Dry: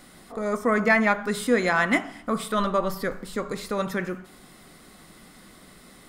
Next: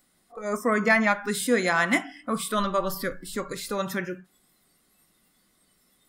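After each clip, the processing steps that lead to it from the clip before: spectral noise reduction 18 dB; treble shelf 4.6 kHz +8 dB; trim -1.5 dB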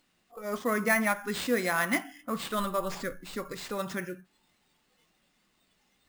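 sample-rate reducer 12 kHz, jitter 0%; trim -5 dB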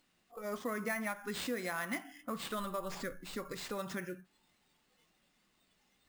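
compression 3:1, threshold -33 dBFS, peak gain reduction 9.5 dB; trim -3 dB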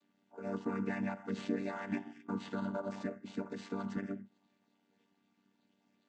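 vocoder on a held chord minor triad, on G3; AM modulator 95 Hz, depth 25%; in parallel at -1.5 dB: peak limiter -35 dBFS, peak gain reduction 10 dB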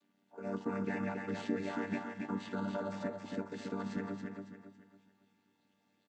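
feedback delay 277 ms, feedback 36%, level -4.5 dB

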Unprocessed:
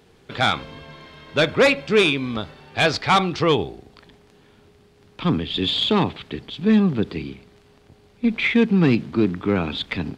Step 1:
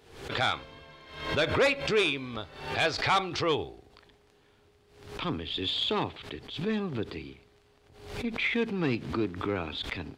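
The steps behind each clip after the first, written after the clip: peaking EQ 190 Hz -9.5 dB 0.87 oct; swell ahead of each attack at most 84 dB/s; trim -8 dB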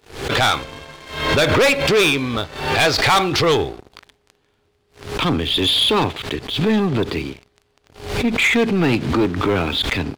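waveshaping leveller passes 3; trim +4.5 dB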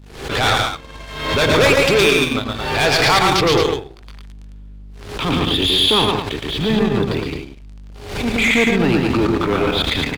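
hum 50 Hz, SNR 20 dB; multi-tap echo 115/142/218 ms -3/-7.5/-6 dB; transient shaper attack -7 dB, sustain -11 dB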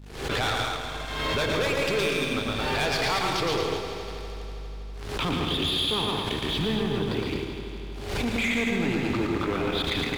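compression 5:1, threshold -22 dBFS, peak gain reduction 11.5 dB; on a send: multi-head delay 81 ms, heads second and third, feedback 69%, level -11 dB; on the sum: trim -3 dB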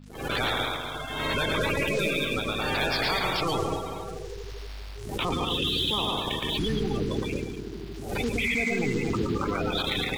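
coarse spectral quantiser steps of 30 dB; in parallel at -8 dB: small samples zeroed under -36 dBFS; on the sum: trim -3 dB

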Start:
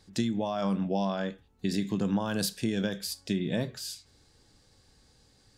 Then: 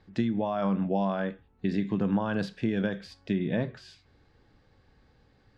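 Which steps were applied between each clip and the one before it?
Chebyshev low-pass 2 kHz, order 2; trim +2.5 dB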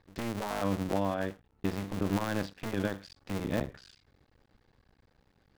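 cycle switcher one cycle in 2, muted; trim -1.5 dB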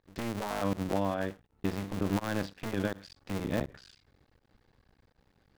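volume shaper 82 bpm, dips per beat 1, -24 dB, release 79 ms

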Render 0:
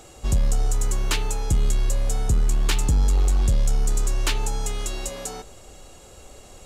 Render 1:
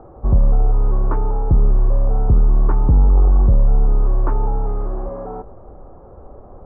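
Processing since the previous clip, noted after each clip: steep low-pass 1.2 kHz 36 dB/octave; trim +7 dB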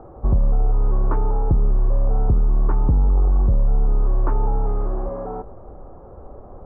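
compression, threshold -13 dBFS, peak gain reduction 5 dB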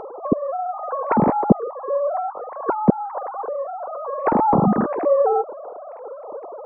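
formants replaced by sine waves; trim -5 dB

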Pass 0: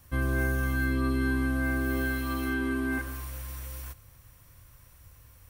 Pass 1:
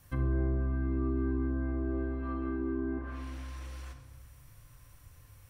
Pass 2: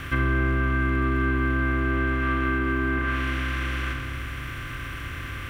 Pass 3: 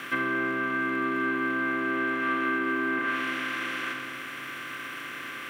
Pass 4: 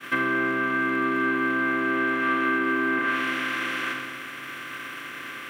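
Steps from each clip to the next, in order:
low-pass that closes with the level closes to 690 Hz, closed at -26 dBFS; on a send at -5 dB: reverberation RT60 1.2 s, pre-delay 7 ms; on the sum: trim -3 dB
spectral levelling over time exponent 0.4; small samples zeroed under -52.5 dBFS; high-order bell 2.1 kHz +14.5 dB; trim +4.5 dB
Bessel high-pass 290 Hz, order 6
expander -34 dBFS; trim +3.5 dB

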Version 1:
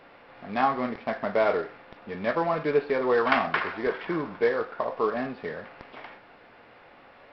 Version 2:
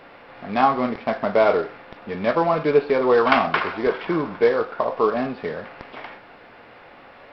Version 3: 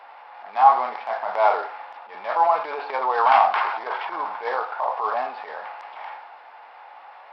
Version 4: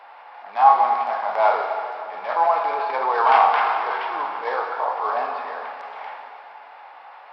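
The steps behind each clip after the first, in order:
dynamic bell 1.8 kHz, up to -6 dB, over -46 dBFS, Q 3.7; trim +6.5 dB
transient shaper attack -9 dB, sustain +4 dB; resonant high-pass 840 Hz, resonance Q 4.9; trim -4.5 dB
reverberation RT60 2.7 s, pre-delay 27 ms, DRR 4 dB

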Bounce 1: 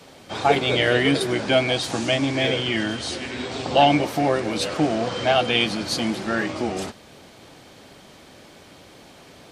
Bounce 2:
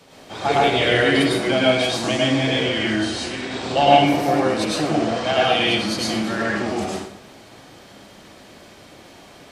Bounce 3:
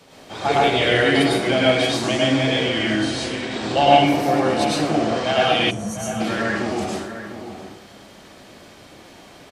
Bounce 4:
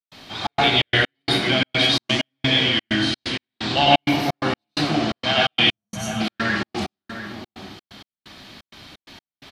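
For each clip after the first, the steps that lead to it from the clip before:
plate-style reverb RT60 0.6 s, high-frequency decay 0.8×, pre-delay 90 ms, DRR -5 dB; trim -3.5 dB
time-frequency box 5.71–6.20 s, 230–5500 Hz -24 dB; echo from a far wall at 120 m, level -10 dB
ten-band graphic EQ 500 Hz -10 dB, 4 kHz +8 dB, 8 kHz -9 dB; trance gate ".xxx.xx.x." 129 bpm -60 dB; trim +2 dB

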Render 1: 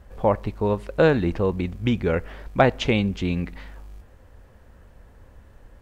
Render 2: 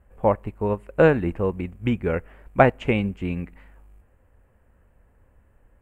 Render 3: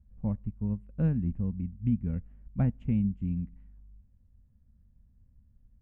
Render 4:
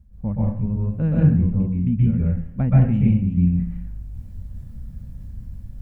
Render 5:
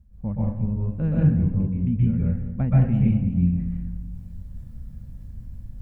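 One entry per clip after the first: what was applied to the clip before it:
high-order bell 4.6 kHz -14 dB 1.1 oct; upward expansion 1.5:1, over -36 dBFS; trim +2.5 dB
FFT filter 230 Hz 0 dB, 360 Hz -22 dB, 1.1 kHz -26 dB; trim -2 dB
reverse; upward compressor, threshold -31 dBFS; reverse; plate-style reverb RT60 0.54 s, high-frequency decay 0.75×, pre-delay 115 ms, DRR -6 dB; trim +4.5 dB
filtered feedback delay 201 ms, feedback 50%, low-pass 1.2 kHz, level -11 dB; trim -3 dB

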